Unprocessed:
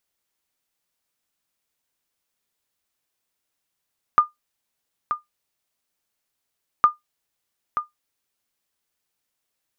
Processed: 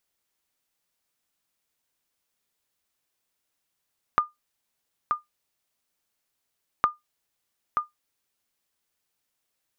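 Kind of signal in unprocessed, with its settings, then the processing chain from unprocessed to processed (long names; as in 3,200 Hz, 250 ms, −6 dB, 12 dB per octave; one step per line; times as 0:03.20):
ping with an echo 1,210 Hz, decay 0.15 s, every 2.66 s, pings 2, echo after 0.93 s, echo −9.5 dB −5.5 dBFS
downward compressor, threshold −20 dBFS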